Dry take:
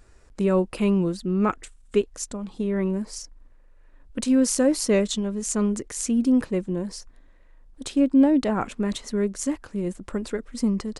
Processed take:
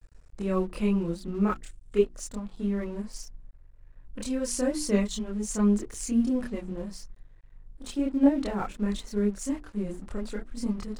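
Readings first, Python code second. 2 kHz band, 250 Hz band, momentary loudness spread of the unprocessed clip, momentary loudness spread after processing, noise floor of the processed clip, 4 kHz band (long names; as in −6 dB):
−5.5 dB, −5.0 dB, 12 LU, 13 LU, −53 dBFS, −6.5 dB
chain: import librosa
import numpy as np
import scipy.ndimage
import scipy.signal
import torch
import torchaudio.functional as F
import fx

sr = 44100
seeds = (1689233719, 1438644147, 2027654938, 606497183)

y = fx.hum_notches(x, sr, base_hz=60, count=6)
y = fx.chorus_voices(y, sr, voices=4, hz=0.65, base_ms=27, depth_ms=3.0, mix_pct=55)
y = fx.low_shelf(y, sr, hz=75.0, db=10.5)
y = np.sign(y) * np.maximum(np.abs(y) - 10.0 ** (-49.0 / 20.0), 0.0)
y = y * 10.0 ** (-2.5 / 20.0)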